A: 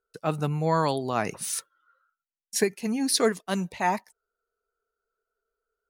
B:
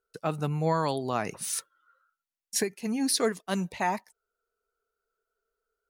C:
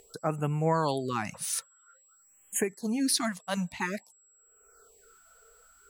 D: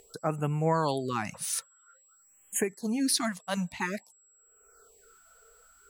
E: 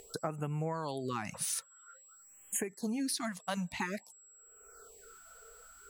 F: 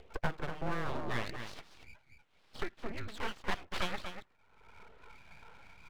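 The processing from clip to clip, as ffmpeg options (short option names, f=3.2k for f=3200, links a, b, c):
-af "alimiter=limit=-15dB:level=0:latency=1:release=493"
-af "acompressor=mode=upward:threshold=-40dB:ratio=2.5,aeval=exprs='val(0)+0.001*sin(2*PI*7700*n/s)':c=same,afftfilt=real='re*(1-between(b*sr/1024,290*pow(4800/290,0.5+0.5*sin(2*PI*0.5*pts/sr))/1.41,290*pow(4800/290,0.5+0.5*sin(2*PI*0.5*pts/sr))*1.41))':imag='im*(1-between(b*sr/1024,290*pow(4800/290,0.5+0.5*sin(2*PI*0.5*pts/sr))/1.41,290*pow(4800/290,0.5+0.5*sin(2*PI*0.5*pts/sr))*1.41))':win_size=1024:overlap=0.75"
-af anull
-af "acompressor=threshold=-36dB:ratio=8,volume=3.5dB"
-filter_complex "[0:a]asplit=2[a][b];[b]adelay=239.1,volume=-8dB,highshelf=f=4k:g=-5.38[c];[a][c]amix=inputs=2:normalize=0,highpass=f=350:t=q:w=0.5412,highpass=f=350:t=q:w=1.307,lowpass=f=3.1k:t=q:w=0.5176,lowpass=f=3.1k:t=q:w=0.7071,lowpass=f=3.1k:t=q:w=1.932,afreqshift=-220,aeval=exprs='abs(val(0))':c=same,volume=5.5dB"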